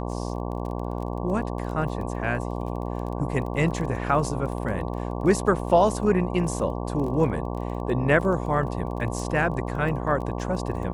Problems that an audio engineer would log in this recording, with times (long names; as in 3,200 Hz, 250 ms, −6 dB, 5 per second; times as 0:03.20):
mains buzz 60 Hz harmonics 19 −30 dBFS
surface crackle 17 per second −33 dBFS